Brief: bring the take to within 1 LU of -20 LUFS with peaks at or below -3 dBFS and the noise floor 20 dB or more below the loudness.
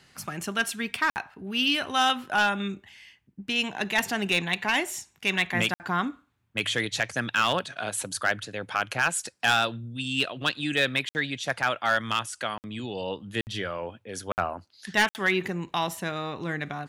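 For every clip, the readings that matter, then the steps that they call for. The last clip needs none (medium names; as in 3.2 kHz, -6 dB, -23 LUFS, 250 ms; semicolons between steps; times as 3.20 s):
clipped samples 0.4%; clipping level -15.0 dBFS; dropouts 7; longest dropout 59 ms; loudness -27.5 LUFS; peak level -15.0 dBFS; loudness target -20.0 LUFS
-> clip repair -15 dBFS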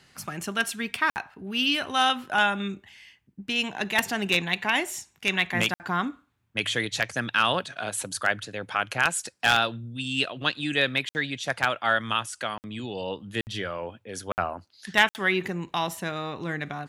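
clipped samples 0.0%; dropouts 7; longest dropout 59 ms
-> interpolate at 1.10/5.74/11.09/12.58/13.41/14.32/15.09 s, 59 ms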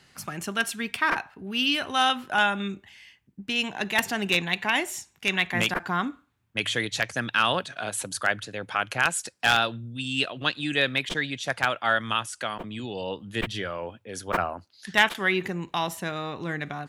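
dropouts 0; loudness -26.5 LUFS; peak level -6.0 dBFS; loudness target -20.0 LUFS
-> trim +6.5 dB; peak limiter -3 dBFS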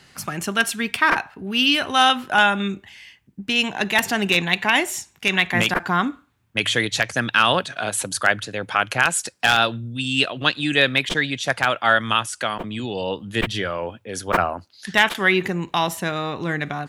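loudness -20.5 LUFS; peak level -3.0 dBFS; noise floor -57 dBFS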